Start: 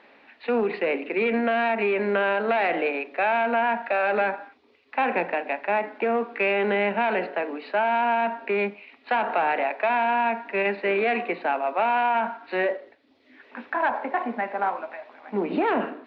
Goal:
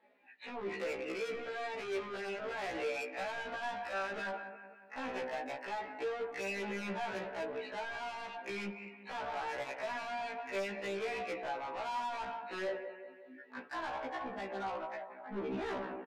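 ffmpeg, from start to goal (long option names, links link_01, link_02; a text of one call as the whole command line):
ffmpeg -i in.wav -filter_complex "[0:a]alimiter=limit=-21dB:level=0:latency=1:release=178,asettb=1/sr,asplit=3[link_01][link_02][link_03];[link_01]atrim=end=4.064[link_04];[link_02]atrim=start=4.06:end=6.56,asetpts=PTS-STARTPTS,afade=type=in:duration=0.004:curve=qsin,afade=type=out:start_time=2.496:duration=0.004:curve=qsin,bandreject=frequency=2400:width=21[link_05];[link_03]atrim=start=6.556[link_06];[link_04][link_05]acrossfade=duration=0.004:curve1=hsin:curve2=qsin[link_07];[link_07][link_06]acrossfade=duration=0.004:curve1=qsin:curve2=hsin,afftdn=noise_reduction=18:noise_floor=-45,flanger=delay=4.6:depth=5.2:regen=22:speed=0.13:shape=triangular,aecho=1:1:183|366|549|732|915:0.188|0.0942|0.0471|0.0235|0.0118,asoftclip=type=tanh:threshold=-36.5dB,afftfilt=real='re*1.73*eq(mod(b,3),0)':imag='im*1.73*eq(mod(b,3),0)':win_size=2048:overlap=0.75,volume=3dB" out.wav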